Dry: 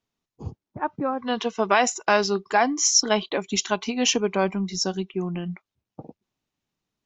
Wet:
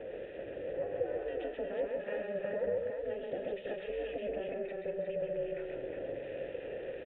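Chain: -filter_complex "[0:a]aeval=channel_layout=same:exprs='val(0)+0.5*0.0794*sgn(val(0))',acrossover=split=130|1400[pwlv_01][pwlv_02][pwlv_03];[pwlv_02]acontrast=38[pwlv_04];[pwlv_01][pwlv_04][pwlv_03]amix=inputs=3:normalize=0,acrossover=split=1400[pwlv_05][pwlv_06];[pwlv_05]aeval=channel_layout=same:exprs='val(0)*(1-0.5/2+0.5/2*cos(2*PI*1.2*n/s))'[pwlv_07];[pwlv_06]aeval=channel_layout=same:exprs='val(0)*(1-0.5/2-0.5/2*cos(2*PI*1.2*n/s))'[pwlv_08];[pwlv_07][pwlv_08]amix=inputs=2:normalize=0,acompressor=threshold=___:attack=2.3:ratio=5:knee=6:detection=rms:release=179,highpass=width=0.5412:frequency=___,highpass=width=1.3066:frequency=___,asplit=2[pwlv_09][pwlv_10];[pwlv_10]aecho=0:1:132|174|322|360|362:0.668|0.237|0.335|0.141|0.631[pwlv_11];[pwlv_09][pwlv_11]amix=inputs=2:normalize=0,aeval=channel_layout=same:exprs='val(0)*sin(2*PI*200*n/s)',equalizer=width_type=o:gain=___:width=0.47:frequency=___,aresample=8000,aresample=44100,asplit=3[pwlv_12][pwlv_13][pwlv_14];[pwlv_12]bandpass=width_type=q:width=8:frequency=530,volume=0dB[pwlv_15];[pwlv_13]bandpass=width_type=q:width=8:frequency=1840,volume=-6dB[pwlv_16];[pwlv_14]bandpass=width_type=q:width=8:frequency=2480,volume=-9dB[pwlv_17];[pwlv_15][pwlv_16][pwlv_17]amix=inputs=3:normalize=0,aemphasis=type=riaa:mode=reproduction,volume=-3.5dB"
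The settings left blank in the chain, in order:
-18dB, 57, 57, -9, 79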